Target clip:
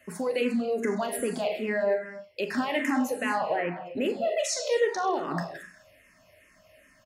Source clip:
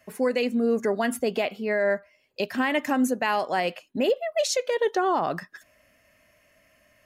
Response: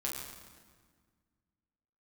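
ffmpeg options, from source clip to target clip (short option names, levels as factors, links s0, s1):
-filter_complex "[0:a]asplit=3[s0][s1][s2];[s0]afade=t=out:st=3.37:d=0.02[s3];[s1]lowpass=f=2200:w=0.5412,lowpass=f=2200:w=1.3066,afade=t=in:st=3.37:d=0.02,afade=t=out:st=3.85:d=0.02[s4];[s2]afade=t=in:st=3.85:d=0.02[s5];[s3][s4][s5]amix=inputs=3:normalize=0,alimiter=limit=0.0841:level=0:latency=1:release=98,asplit=2[s6][s7];[s7]adelay=40,volume=0.282[s8];[s6][s8]amix=inputs=2:normalize=0,asplit=2[s9][s10];[1:a]atrim=start_sample=2205,atrim=end_sample=6174,asetrate=22932,aresample=44100[s11];[s10][s11]afir=irnorm=-1:irlink=0,volume=0.501[s12];[s9][s12]amix=inputs=2:normalize=0,asplit=2[s13][s14];[s14]afreqshift=-2.5[s15];[s13][s15]amix=inputs=2:normalize=1"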